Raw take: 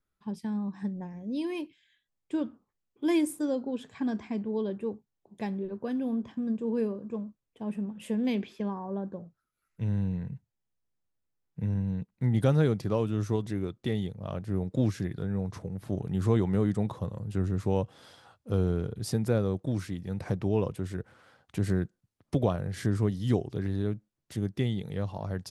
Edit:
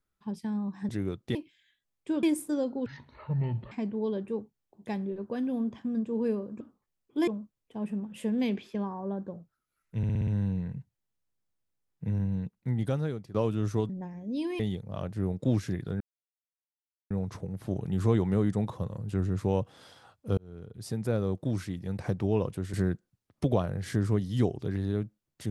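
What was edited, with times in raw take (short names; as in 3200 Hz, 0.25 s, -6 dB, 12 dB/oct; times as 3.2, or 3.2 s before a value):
0.89–1.59 swap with 13.45–13.91
2.47–3.14 move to 7.13
3.77–4.24 speed 55%
9.83 stutter 0.06 s, 6 plays
11.91–12.9 fade out, to -16 dB
15.32 insert silence 1.10 s
18.59–19.58 fade in
20.95–21.64 cut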